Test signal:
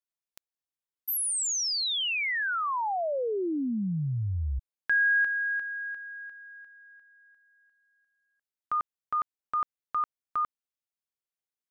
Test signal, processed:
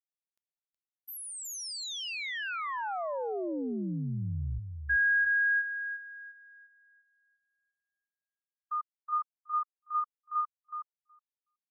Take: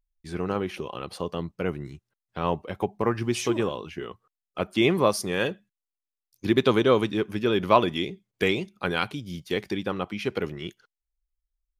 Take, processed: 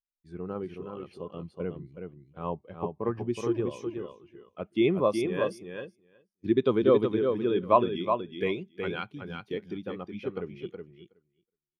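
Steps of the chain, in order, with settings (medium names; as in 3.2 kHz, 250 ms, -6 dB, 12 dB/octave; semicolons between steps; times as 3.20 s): feedback delay 370 ms, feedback 17%, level -4 dB; spectral contrast expander 1.5:1; trim -3.5 dB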